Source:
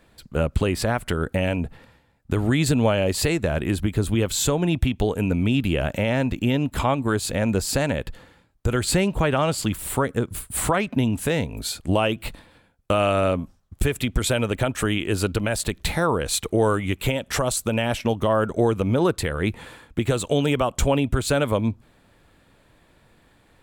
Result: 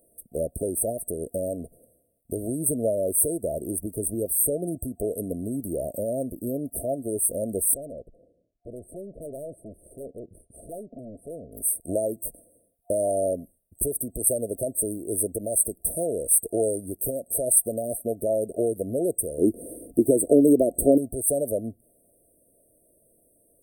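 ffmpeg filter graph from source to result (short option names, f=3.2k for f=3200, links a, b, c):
-filter_complex "[0:a]asettb=1/sr,asplit=3[a][b][c];[a]atrim=end=7.744[d];[b]atrim=start=7.74:end=11.52,asetpts=PTS-STARTPTS,afade=t=in:d=0.004:c=qsin,afade=t=out:st=3.776:d=0.004:c=qsin,lowpass=1.8k,aeval=exprs='(tanh(28.2*val(0)+0.45)-tanh(0.45))/28.2':c=same[e];[c]atrim=start=11.516[f];[d][e]acrossfade=d=0.004:c1=hsin:c2=qsin[g];[g][f]acrossfade=d=0.004:c1=qsin:c2=hsin,asettb=1/sr,asplit=3[h][i][j];[h]atrim=end=19.384[k];[i]atrim=start=19.38:end=20.98,asetpts=PTS-STARTPTS,afade=t=in:d=0.004:c=qsin,afade=t=out:st=1.596:d=0.004:c=qsin,equalizer=f=300:w=1.1:g=14.5,acompressor=mode=upward:threshold=-26dB:ratio=2.5:attack=3.2:release=140:knee=2.83:detection=peak,aeval=exprs='val(0)+0.00708*(sin(2*PI*50*n/s)+sin(2*PI*2*50*n/s)/2+sin(2*PI*3*50*n/s)/3+sin(2*PI*4*50*n/s)/4+sin(2*PI*5*50*n/s)/5)':c=same[l];[j]atrim=start=20.976[m];[k][l]acrossfade=d=0.004:c1=hsin:c2=qsin[n];[n][m]acrossfade=d=0.004:c1=qsin:c2=hsin,afftfilt=real='re*(1-between(b*sr/4096,700,8200))':imag='im*(1-between(b*sr/4096,700,8200))':win_size=4096:overlap=0.75,bass=f=250:g=-14,treble=f=4k:g=13,volume=-1.5dB"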